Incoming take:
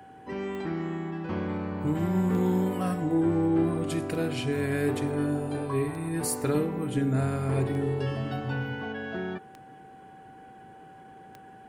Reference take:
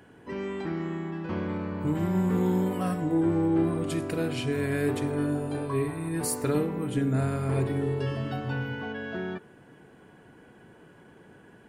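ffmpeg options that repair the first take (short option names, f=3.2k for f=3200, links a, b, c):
-af "adeclick=t=4,bandreject=f=770:w=30"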